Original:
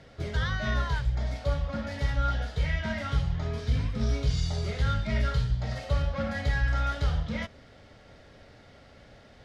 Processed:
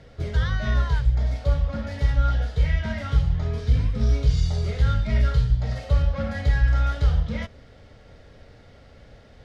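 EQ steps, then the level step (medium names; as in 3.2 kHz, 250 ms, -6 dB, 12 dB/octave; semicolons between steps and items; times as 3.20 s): bass shelf 110 Hz +10 dB; peaking EQ 470 Hz +5 dB 0.29 oct; 0.0 dB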